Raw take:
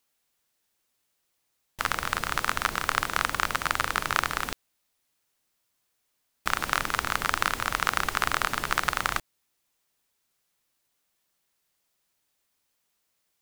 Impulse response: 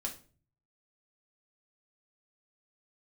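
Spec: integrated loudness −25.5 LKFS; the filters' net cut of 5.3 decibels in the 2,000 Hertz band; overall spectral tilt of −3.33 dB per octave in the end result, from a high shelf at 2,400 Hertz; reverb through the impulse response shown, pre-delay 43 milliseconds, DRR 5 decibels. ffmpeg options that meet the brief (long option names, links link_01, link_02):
-filter_complex "[0:a]equalizer=frequency=2000:width_type=o:gain=-5.5,highshelf=frequency=2400:gain=-4,asplit=2[link_01][link_02];[1:a]atrim=start_sample=2205,adelay=43[link_03];[link_02][link_03]afir=irnorm=-1:irlink=0,volume=-5.5dB[link_04];[link_01][link_04]amix=inputs=2:normalize=0,volume=4.5dB"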